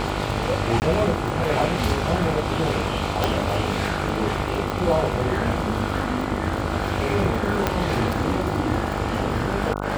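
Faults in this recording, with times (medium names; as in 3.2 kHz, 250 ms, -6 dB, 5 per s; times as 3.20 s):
buzz 50 Hz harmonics 29 -28 dBFS
crackle 49 per s -28 dBFS
0.80–0.82 s: dropout 19 ms
3.24 s: pop -6 dBFS
4.70 s: pop -12 dBFS
7.67 s: pop -5 dBFS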